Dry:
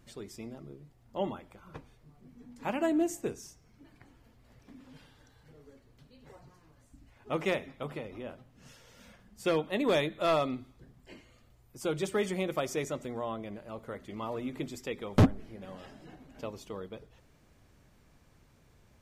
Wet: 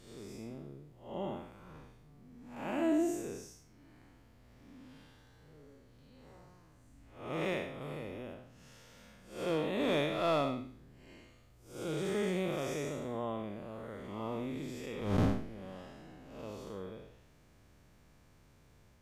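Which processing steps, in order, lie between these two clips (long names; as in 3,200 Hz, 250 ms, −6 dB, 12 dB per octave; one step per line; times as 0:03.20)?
spectrum smeared in time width 201 ms
0:07.81–0:08.34: high-shelf EQ 8,700 Hz +6.5 dB
level +1 dB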